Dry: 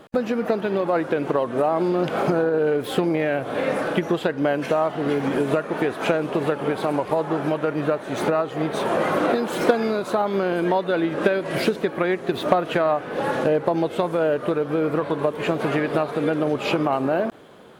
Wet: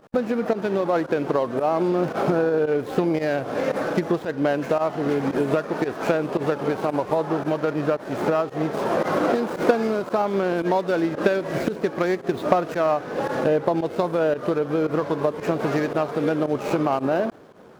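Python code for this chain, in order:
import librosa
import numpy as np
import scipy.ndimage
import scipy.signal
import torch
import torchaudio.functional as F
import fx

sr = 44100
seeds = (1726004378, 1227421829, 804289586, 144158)

y = scipy.ndimage.median_filter(x, 15, mode='constant')
y = fx.volume_shaper(y, sr, bpm=113, per_beat=1, depth_db=-16, release_ms=69.0, shape='fast start')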